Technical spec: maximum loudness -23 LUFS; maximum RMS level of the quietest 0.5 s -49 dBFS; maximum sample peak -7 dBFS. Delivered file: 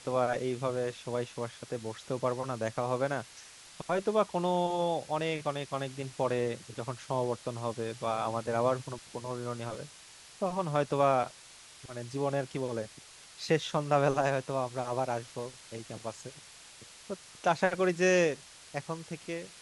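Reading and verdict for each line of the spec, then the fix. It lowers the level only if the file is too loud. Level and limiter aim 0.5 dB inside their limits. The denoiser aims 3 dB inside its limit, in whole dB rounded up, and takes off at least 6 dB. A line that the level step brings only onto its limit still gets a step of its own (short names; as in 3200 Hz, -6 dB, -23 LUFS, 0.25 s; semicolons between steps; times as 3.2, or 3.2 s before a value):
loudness -32.5 LUFS: OK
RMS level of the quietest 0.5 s -53 dBFS: OK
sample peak -12.0 dBFS: OK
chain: none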